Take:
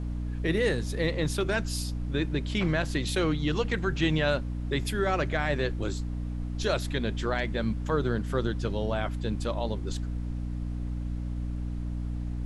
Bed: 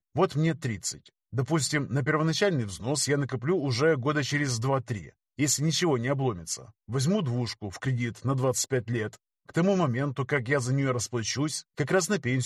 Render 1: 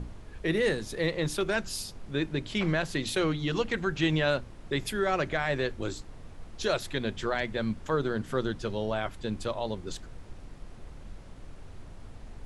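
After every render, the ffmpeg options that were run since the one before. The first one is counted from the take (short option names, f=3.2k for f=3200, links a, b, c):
-af "bandreject=f=60:t=h:w=6,bandreject=f=120:t=h:w=6,bandreject=f=180:t=h:w=6,bandreject=f=240:t=h:w=6,bandreject=f=300:t=h:w=6"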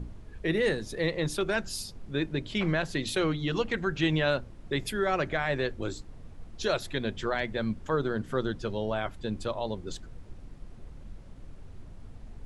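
-af "afftdn=nr=6:nf=-47"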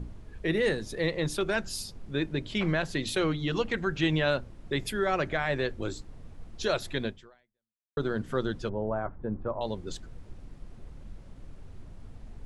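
-filter_complex "[0:a]asettb=1/sr,asplit=3[a][b][c];[a]atrim=end=8.694[d];[b]atrim=start=8.69:end=9.61,asetpts=PTS-STARTPTS,afade=t=in:d=0.004:c=qsin,afade=t=out:st=0.916:d=0.004:c=qsin,lowpass=f=1.4k:w=0.5412,lowpass=f=1.4k:w=1.3066[e];[c]atrim=start=9.606[f];[d][e]acrossfade=d=0.004:c1=hsin:c2=qsin[g];[g][f]acrossfade=d=0.004:c1=qsin:c2=hsin,asplit=2[h][i];[h]atrim=end=7.97,asetpts=PTS-STARTPTS,afade=t=out:st=7.06:d=0.91:c=exp[j];[i]atrim=start=7.97,asetpts=PTS-STARTPTS,afade=t=in:d=0.004:c=hsin[k];[j][k]concat=n=2:v=0:a=1"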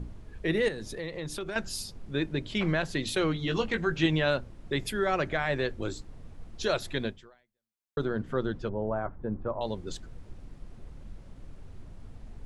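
-filter_complex "[0:a]asettb=1/sr,asplit=3[a][b][c];[a]atrim=end=0.684[d];[b]atrim=start=0.68:end=1.56,asetpts=PTS-STARTPTS,afade=t=in:d=0.004:c=qsin,afade=t=out:st=0.876:d=0.004:c=qsin,acompressor=threshold=-34dB:ratio=3:attack=3.2:release=140:knee=1:detection=peak[e];[c]atrim=start=1.556[f];[d][e]acrossfade=d=0.004:c1=hsin:c2=qsin[g];[g][f]acrossfade=d=0.004:c1=qsin:c2=hsin,asettb=1/sr,asplit=3[h][i][j];[h]atrim=end=3.344[k];[i]atrim=start=3.34:end=4.06,asetpts=PTS-STARTPTS,afade=t=in:d=0.004:c=qsin,afade=t=out:st=0.716:d=0.004:c=qsin,asplit=2[l][m];[m]adelay=18,volume=-6.5dB[n];[l][n]amix=inputs=2:normalize=0,atrim=end_sample=31752[o];[j]atrim=start=4.056[p];[k][o]acrossfade=d=0.004:c1=hsin:c2=qsin[q];[q][p]acrossfade=d=0.004:c1=qsin:c2=hsin,asettb=1/sr,asplit=3[r][s][t];[r]atrim=end=8.054[u];[s]atrim=start=8.05:end=8.79,asetpts=PTS-STARTPTS,afade=t=in:d=0.004:c=qsin,afade=t=out:st=0.736:d=0.004:c=qsin,lowpass=f=2.2k:p=1[v];[t]atrim=start=8.786[w];[u][v]acrossfade=d=0.004:c1=hsin:c2=qsin[x];[x][w]acrossfade=d=0.004:c1=qsin:c2=hsin"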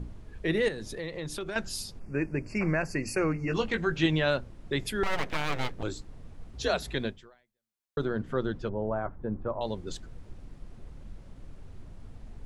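-filter_complex "[0:a]asplit=3[a][b][c];[a]afade=t=out:st=1.99:d=0.02[d];[b]asuperstop=centerf=3500:order=20:qfactor=2.1,afade=t=in:st=1.99:d=0.02,afade=t=out:st=3.53:d=0.02[e];[c]afade=t=in:st=3.53:d=0.02[f];[d][e][f]amix=inputs=3:normalize=0,asettb=1/sr,asplit=3[g][h][i];[g]atrim=end=5.034[j];[h]atrim=start=5.03:end=5.83,asetpts=PTS-STARTPTS,afade=t=in:d=0.004:c=qsin,afade=t=out:st=0.796:d=0.004:c=qsin,aeval=exprs='abs(val(0))':c=same[k];[i]atrim=start=5.826[l];[j][k]acrossfade=d=0.004:c1=hsin:c2=qsin[m];[m][l]acrossfade=d=0.004:c1=qsin:c2=hsin,asettb=1/sr,asplit=3[n][o][p];[n]atrim=end=6.534[q];[o]atrim=start=6.53:end=6.95,asetpts=PTS-STARTPTS,afade=t=in:d=0.004:c=qsin,afade=t=out:st=0.416:d=0.004:c=qsin,afreqshift=47[r];[p]atrim=start=6.946[s];[q][r]acrossfade=d=0.004:c1=hsin:c2=qsin[t];[t][s]acrossfade=d=0.004:c1=qsin:c2=hsin"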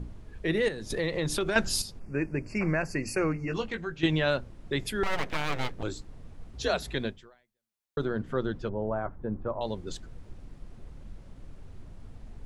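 -filter_complex "[0:a]asettb=1/sr,asplit=3[a][b][c];[a]atrim=end=0.904[d];[b]atrim=start=0.9:end=1.82,asetpts=PTS-STARTPTS,afade=t=in:d=0.004:c=qsin,afade=t=out:st=0.916:d=0.004:c=qsin,acontrast=78[e];[c]atrim=start=1.816[f];[d][e]acrossfade=d=0.004:c1=hsin:c2=qsin[g];[g][f]acrossfade=d=0.004:c1=qsin:c2=hsin,asplit=2[h][i];[h]atrim=end=4.03,asetpts=PTS-STARTPTS,afade=t=out:st=3.26:d=0.77:silence=0.298538[j];[i]atrim=start=4.03,asetpts=PTS-STARTPTS,afade=t=in:d=0.004:c=hsin:silence=0.298538[k];[j][k]concat=n=2:v=0:a=1"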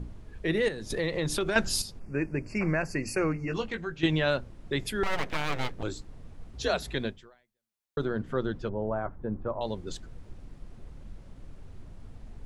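-af anull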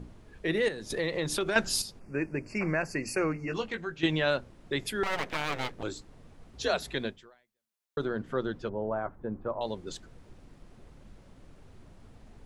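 -af "lowshelf=f=130:g=-10"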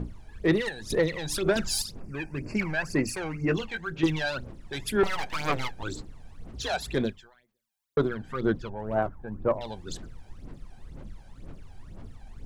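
-af "asoftclip=type=tanh:threshold=-24.5dB,aphaser=in_gain=1:out_gain=1:delay=1.3:decay=0.72:speed=2:type=sinusoidal"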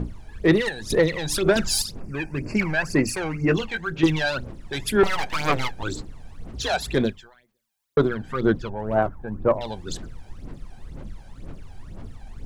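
-af "volume=5.5dB"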